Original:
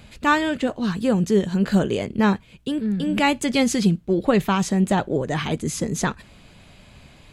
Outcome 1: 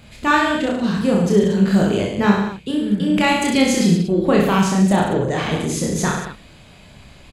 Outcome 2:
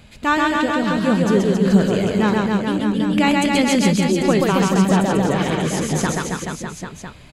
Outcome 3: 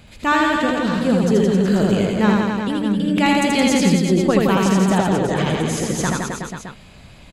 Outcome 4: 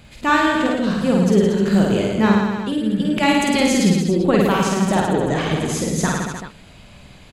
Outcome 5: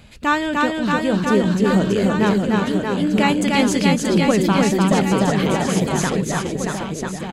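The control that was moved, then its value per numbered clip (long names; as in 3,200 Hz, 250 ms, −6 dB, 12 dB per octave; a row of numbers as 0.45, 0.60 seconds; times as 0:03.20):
reverse bouncing-ball delay, first gap: 30, 130, 80, 50, 300 milliseconds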